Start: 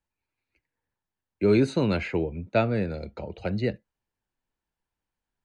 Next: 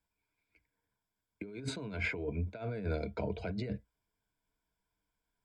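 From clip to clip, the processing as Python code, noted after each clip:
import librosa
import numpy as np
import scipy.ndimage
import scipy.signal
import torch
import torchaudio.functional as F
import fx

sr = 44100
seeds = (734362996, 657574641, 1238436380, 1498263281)

y = fx.ripple_eq(x, sr, per_octave=1.7, db=11)
y = fx.over_compress(y, sr, threshold_db=-31.0, ratio=-1.0)
y = F.gain(torch.from_numpy(y), -7.0).numpy()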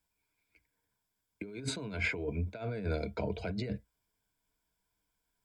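y = fx.high_shelf(x, sr, hz=4100.0, db=6.5)
y = F.gain(torch.from_numpy(y), 1.0).numpy()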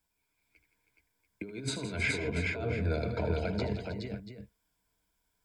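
y = fx.echo_multitap(x, sr, ms=(77, 166, 318, 421, 686), db=(-11.5, -12.5, -11.5, -3.5, -12.0))
y = F.gain(torch.from_numpy(y), 1.5).numpy()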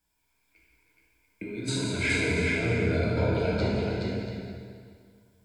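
y = fx.rev_plate(x, sr, seeds[0], rt60_s=2.1, hf_ratio=0.85, predelay_ms=0, drr_db=-5.0)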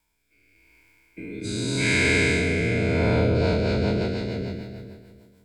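y = fx.spec_dilate(x, sr, span_ms=480)
y = fx.rotary_switch(y, sr, hz=0.85, then_hz=6.7, switch_at_s=2.97)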